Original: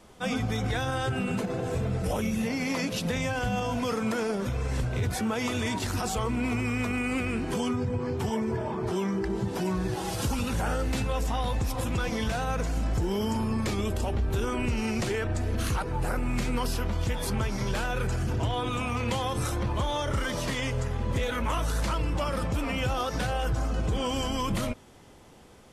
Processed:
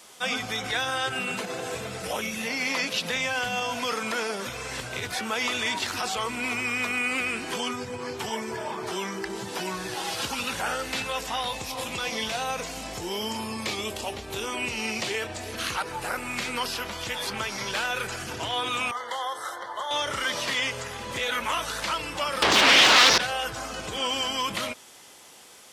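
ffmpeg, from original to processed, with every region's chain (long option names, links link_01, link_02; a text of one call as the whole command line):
ffmpeg -i in.wav -filter_complex "[0:a]asettb=1/sr,asplit=3[link_01][link_02][link_03];[link_01]atrim=end=11.474[link_04];[link_02]atrim=start=11.47:end=15.53,asetpts=PTS-STARTPTS,afade=type=in:duration=0.004:curve=qsin,afade=type=out:start_time=4.056:duration=0.004:curve=qsin,equalizer=frequency=1500:width=2.4:gain=-7,asplit=2[link_05][link_06];[link_06]adelay=23,volume=-11dB[link_07];[link_05][link_07]amix=inputs=2:normalize=0,atrim=end_sample=179046[link_08];[link_03]atrim=start=15.526[link_09];[link_04][link_08]acrossfade=duration=0.004:curve1=hsin:curve2=qsin[link_10];[link_10][link_09]acrossfade=duration=0.004:curve1=qsin:curve2=hsin,asettb=1/sr,asplit=3[link_11][link_12][link_13];[link_11]atrim=end=18.914[link_14];[link_12]atrim=start=18.91:end=19.91,asetpts=PTS-STARTPTS,afade=type=in:duration=0.004:curve=qsin,afade=type=out:start_time=0.996:duration=0.004:curve=qsin,asuperstop=centerf=2500:order=12:qfactor=2.9,acrossover=split=460 2300:gain=0.0631 1 0.178[link_15][link_16][link_17];[link_15][link_16][link_17]amix=inputs=3:normalize=0[link_18];[link_13]atrim=start=19.906[link_19];[link_14][link_18]acrossfade=duration=0.004:curve1=hsin:curve2=qsin[link_20];[link_20][link_19]acrossfade=duration=0.004:curve1=qsin:curve2=hsin,asettb=1/sr,asplit=3[link_21][link_22][link_23];[link_21]atrim=end=22.424[link_24];[link_22]atrim=start=22.42:end=23.18,asetpts=PTS-STARTPTS,afade=type=in:duration=0.004:curve=qsin,afade=type=out:start_time=0.756:duration=0.004:curve=qsin,highshelf=frequency=3000:width_type=q:width=1.5:gain=6.5,aeval=exprs='0.15*sin(PI/2*5.01*val(0)/0.15)':channel_layout=same[link_25];[link_23]atrim=start=23.176[link_26];[link_24][link_25]acrossfade=duration=0.004:curve1=hsin:curve2=qsin[link_27];[link_27][link_26]acrossfade=duration=0.004:curve1=qsin:curve2=hsin,highpass=frequency=860:poles=1,acrossover=split=4400[link_28][link_29];[link_29]acompressor=threshold=-54dB:ratio=4:attack=1:release=60[link_30];[link_28][link_30]amix=inputs=2:normalize=0,highshelf=frequency=2700:gain=10.5,volume=4dB" out.wav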